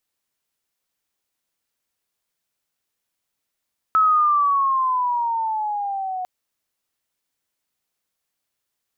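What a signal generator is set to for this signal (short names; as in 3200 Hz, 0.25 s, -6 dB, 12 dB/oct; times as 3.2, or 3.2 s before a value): gliding synth tone sine, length 2.30 s, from 1300 Hz, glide -10 st, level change -12 dB, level -12.5 dB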